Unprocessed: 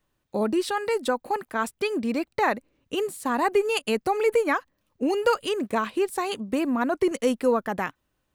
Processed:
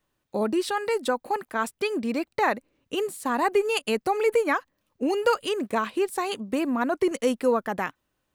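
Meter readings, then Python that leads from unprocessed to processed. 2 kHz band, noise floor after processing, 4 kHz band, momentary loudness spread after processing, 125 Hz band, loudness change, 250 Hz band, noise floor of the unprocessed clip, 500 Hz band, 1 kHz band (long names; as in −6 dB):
0.0 dB, −78 dBFS, 0.0 dB, 7 LU, can't be measured, −0.5 dB, −1.0 dB, −76 dBFS, −0.5 dB, 0.0 dB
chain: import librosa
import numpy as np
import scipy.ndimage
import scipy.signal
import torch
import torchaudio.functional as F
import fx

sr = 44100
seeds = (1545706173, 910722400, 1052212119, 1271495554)

y = fx.low_shelf(x, sr, hz=130.0, db=-5.5)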